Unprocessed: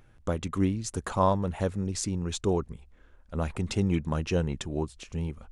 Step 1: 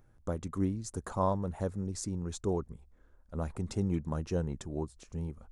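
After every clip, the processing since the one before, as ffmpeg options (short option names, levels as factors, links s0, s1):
-af "equalizer=f=2800:t=o:w=1.2:g=-11.5,volume=0.562"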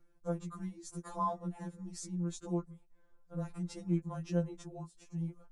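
-af "afftfilt=real='re*2.83*eq(mod(b,8),0)':imag='im*2.83*eq(mod(b,8),0)':win_size=2048:overlap=0.75,volume=0.75"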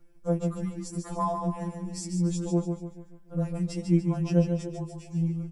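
-filter_complex "[0:a]asplit=2[s0][s1];[s1]adelay=12,volume=0.596[s2];[s0][s2]amix=inputs=2:normalize=0,asplit=2[s3][s4];[s4]aecho=0:1:145|290|435|580|725:0.473|0.199|0.0835|0.0351|0.0147[s5];[s3][s5]amix=inputs=2:normalize=0,volume=2"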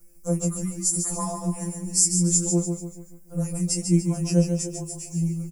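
-filter_complex "[0:a]asplit=2[s0][s1];[s1]adelay=17,volume=0.531[s2];[s0][s2]amix=inputs=2:normalize=0,aexciter=amount=13.6:drive=2.5:freq=5500"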